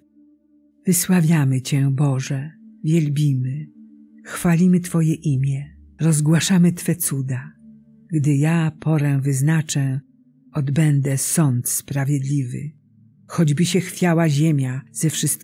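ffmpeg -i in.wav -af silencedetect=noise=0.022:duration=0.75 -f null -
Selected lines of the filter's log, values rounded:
silence_start: 0.00
silence_end: 0.87 | silence_duration: 0.87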